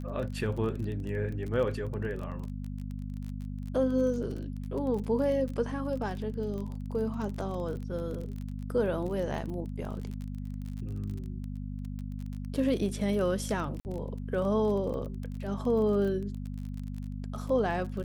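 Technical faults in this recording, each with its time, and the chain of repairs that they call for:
crackle 29 per s -36 dBFS
hum 50 Hz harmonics 5 -37 dBFS
13.80–13.85 s: dropout 49 ms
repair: de-click; de-hum 50 Hz, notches 5; interpolate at 13.80 s, 49 ms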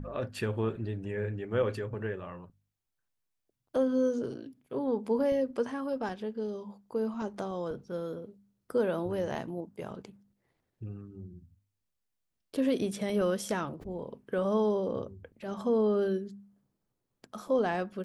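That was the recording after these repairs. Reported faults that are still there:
nothing left

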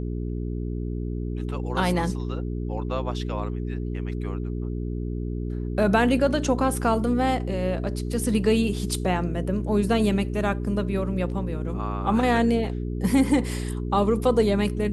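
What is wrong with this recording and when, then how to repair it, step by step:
hum 60 Hz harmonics 7 -29 dBFS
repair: de-hum 60 Hz, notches 7

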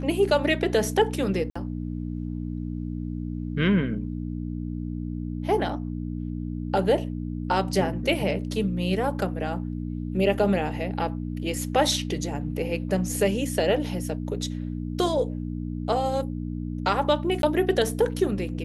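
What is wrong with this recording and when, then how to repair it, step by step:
hum 60 Hz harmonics 5 -31 dBFS
1.50–1.55 s: dropout 55 ms
17.42–17.43 s: dropout 12 ms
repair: de-hum 60 Hz, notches 5; interpolate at 1.50 s, 55 ms; interpolate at 17.42 s, 12 ms

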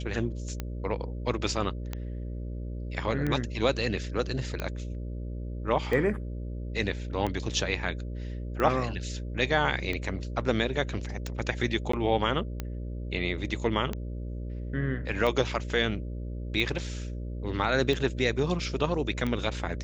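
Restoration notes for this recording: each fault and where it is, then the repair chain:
buzz 60 Hz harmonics 10 -35 dBFS
tick 45 rpm -18 dBFS
11.92–11.93 s: dropout 14 ms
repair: de-click; de-hum 60 Hz, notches 10; interpolate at 11.92 s, 14 ms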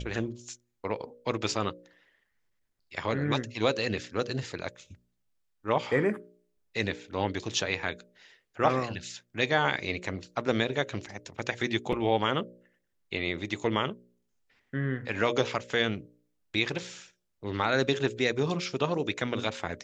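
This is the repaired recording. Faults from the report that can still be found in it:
nothing left

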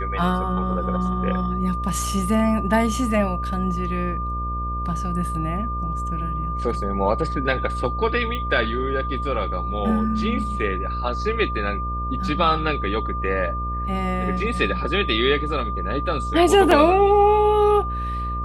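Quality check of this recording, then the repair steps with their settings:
buzz 60 Hz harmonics 11 -28 dBFS
whine 1.2 kHz -27 dBFS
8.35 s: pop -17 dBFS
16.71 s: dropout 4.2 ms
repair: de-click; de-hum 60 Hz, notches 11; band-stop 1.2 kHz, Q 30; interpolate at 16.71 s, 4.2 ms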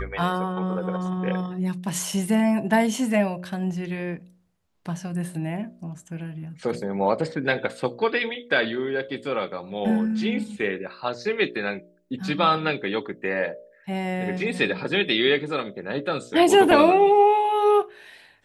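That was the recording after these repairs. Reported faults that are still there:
nothing left

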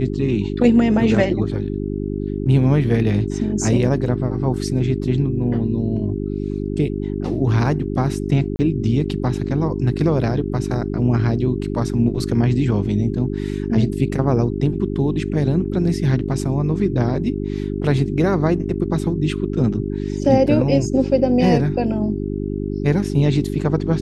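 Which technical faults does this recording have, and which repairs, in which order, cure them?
hum 50 Hz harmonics 8 -24 dBFS
8.56–8.59 s: dropout 30 ms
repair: de-hum 50 Hz, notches 8; interpolate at 8.56 s, 30 ms

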